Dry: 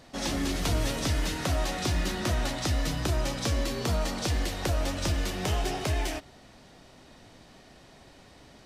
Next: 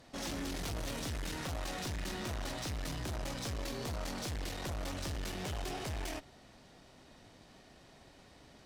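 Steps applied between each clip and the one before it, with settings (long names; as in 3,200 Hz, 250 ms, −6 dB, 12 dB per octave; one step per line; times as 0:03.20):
tube saturation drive 34 dB, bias 0.65
level −2 dB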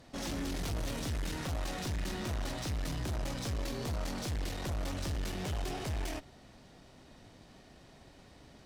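low-shelf EQ 320 Hz +4.5 dB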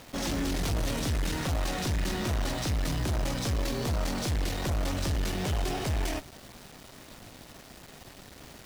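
bit reduction 9 bits
level +6.5 dB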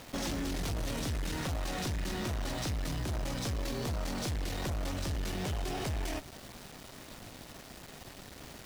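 downward compressor, threshold −32 dBFS, peak gain reduction 6.5 dB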